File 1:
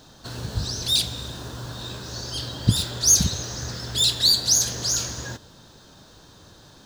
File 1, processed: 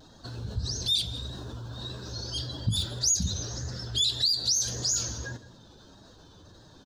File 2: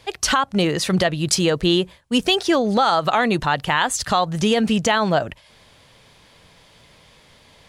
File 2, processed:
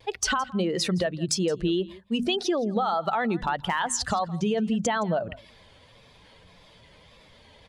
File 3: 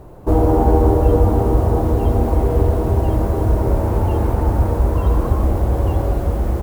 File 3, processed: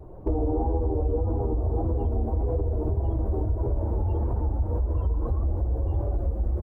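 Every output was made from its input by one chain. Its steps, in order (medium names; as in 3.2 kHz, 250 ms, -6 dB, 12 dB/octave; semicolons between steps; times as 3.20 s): spectral contrast enhancement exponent 1.5; peaking EQ 140 Hz -6 dB 0.34 oct; hum notches 50/100/150/200/250 Hz; in parallel at -3 dB: peak limiter -11.5 dBFS; on the sum: compression 4:1, threshold -16 dBFS; vibrato 1.7 Hz 62 cents; overload inside the chain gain 9 dB; on a send: delay 167 ms -20 dB; on the sum: trim -6.5 dB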